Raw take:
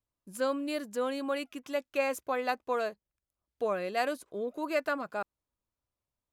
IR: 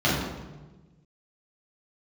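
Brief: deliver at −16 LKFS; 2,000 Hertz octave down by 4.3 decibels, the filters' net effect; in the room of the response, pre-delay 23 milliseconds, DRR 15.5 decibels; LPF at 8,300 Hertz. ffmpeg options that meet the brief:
-filter_complex "[0:a]lowpass=8300,equalizer=frequency=2000:width_type=o:gain=-6,asplit=2[link_01][link_02];[1:a]atrim=start_sample=2205,adelay=23[link_03];[link_02][link_03]afir=irnorm=-1:irlink=0,volume=-32.5dB[link_04];[link_01][link_04]amix=inputs=2:normalize=0,volume=18dB"

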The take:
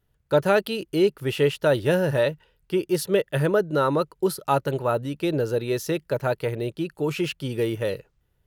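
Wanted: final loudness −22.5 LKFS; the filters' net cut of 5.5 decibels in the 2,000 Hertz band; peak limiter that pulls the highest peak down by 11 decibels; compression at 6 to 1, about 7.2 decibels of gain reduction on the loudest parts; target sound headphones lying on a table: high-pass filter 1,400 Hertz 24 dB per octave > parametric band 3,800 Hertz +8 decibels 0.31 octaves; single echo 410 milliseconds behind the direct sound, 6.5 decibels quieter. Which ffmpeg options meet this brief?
ffmpeg -i in.wav -af "equalizer=frequency=2000:width_type=o:gain=-7,acompressor=threshold=-23dB:ratio=6,alimiter=limit=-24dB:level=0:latency=1,highpass=frequency=1400:width=0.5412,highpass=frequency=1400:width=1.3066,equalizer=frequency=3800:width_type=o:width=0.31:gain=8,aecho=1:1:410:0.473,volume=18.5dB" out.wav

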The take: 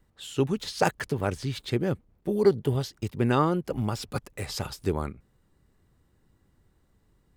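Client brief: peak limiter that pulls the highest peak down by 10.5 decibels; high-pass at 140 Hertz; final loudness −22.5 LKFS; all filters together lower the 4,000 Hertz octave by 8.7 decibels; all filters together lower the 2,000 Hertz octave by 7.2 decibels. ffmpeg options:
ffmpeg -i in.wav -af "highpass=140,equalizer=frequency=2000:width_type=o:gain=-8.5,equalizer=frequency=4000:width_type=o:gain=-9,volume=11dB,alimiter=limit=-8.5dB:level=0:latency=1" out.wav

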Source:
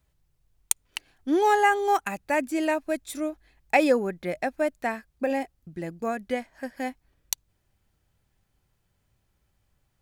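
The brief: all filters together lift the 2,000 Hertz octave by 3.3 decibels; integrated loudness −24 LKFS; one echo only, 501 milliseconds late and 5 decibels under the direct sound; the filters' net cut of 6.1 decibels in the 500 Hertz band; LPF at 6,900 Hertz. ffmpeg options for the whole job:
ffmpeg -i in.wav -af "lowpass=6900,equalizer=frequency=500:width_type=o:gain=-8,equalizer=frequency=2000:width_type=o:gain=4.5,aecho=1:1:501:0.562,volume=3.5dB" out.wav

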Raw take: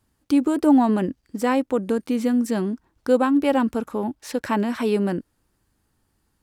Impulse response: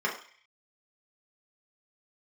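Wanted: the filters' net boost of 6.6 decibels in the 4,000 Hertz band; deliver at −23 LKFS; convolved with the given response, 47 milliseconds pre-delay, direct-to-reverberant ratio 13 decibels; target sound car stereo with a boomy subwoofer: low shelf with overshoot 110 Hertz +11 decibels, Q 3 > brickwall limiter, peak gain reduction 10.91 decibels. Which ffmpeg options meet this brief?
-filter_complex "[0:a]equalizer=frequency=4000:width_type=o:gain=9,asplit=2[link_01][link_02];[1:a]atrim=start_sample=2205,adelay=47[link_03];[link_02][link_03]afir=irnorm=-1:irlink=0,volume=-23dB[link_04];[link_01][link_04]amix=inputs=2:normalize=0,lowshelf=frequency=110:width_type=q:width=3:gain=11,volume=5dB,alimiter=limit=-13.5dB:level=0:latency=1"

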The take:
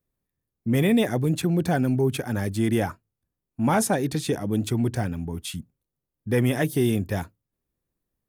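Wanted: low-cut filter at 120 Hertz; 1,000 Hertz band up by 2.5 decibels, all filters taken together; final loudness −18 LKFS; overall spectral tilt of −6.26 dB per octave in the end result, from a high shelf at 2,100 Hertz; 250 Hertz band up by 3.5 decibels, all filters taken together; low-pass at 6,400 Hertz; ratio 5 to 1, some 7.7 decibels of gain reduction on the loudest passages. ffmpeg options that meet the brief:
ffmpeg -i in.wav -af "highpass=120,lowpass=6400,equalizer=frequency=250:width_type=o:gain=4.5,equalizer=frequency=1000:width_type=o:gain=4,highshelf=frequency=2100:gain=-4,acompressor=threshold=-21dB:ratio=5,volume=9dB" out.wav

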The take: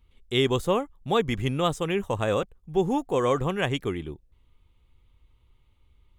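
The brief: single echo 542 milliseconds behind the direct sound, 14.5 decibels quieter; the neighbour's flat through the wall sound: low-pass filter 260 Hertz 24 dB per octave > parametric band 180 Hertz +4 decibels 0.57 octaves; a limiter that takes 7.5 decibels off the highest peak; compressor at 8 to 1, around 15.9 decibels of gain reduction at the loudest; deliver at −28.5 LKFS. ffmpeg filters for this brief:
ffmpeg -i in.wav -af "acompressor=threshold=-35dB:ratio=8,alimiter=level_in=5.5dB:limit=-24dB:level=0:latency=1,volume=-5.5dB,lowpass=frequency=260:width=0.5412,lowpass=frequency=260:width=1.3066,equalizer=frequency=180:width_type=o:width=0.57:gain=4,aecho=1:1:542:0.188,volume=16dB" out.wav

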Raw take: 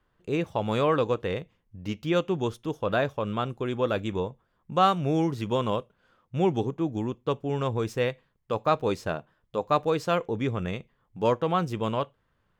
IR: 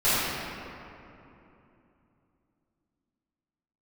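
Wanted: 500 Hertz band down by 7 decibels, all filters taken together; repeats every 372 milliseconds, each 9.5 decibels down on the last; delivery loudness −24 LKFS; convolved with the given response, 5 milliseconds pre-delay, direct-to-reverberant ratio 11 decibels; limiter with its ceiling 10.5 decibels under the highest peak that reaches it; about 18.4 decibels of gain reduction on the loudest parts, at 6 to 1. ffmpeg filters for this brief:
-filter_complex "[0:a]equalizer=frequency=500:width_type=o:gain=-8.5,acompressor=threshold=-40dB:ratio=6,alimiter=level_in=14dB:limit=-24dB:level=0:latency=1,volume=-14dB,aecho=1:1:372|744|1116|1488:0.335|0.111|0.0365|0.012,asplit=2[link_01][link_02];[1:a]atrim=start_sample=2205,adelay=5[link_03];[link_02][link_03]afir=irnorm=-1:irlink=0,volume=-28.5dB[link_04];[link_01][link_04]amix=inputs=2:normalize=0,volume=25dB"

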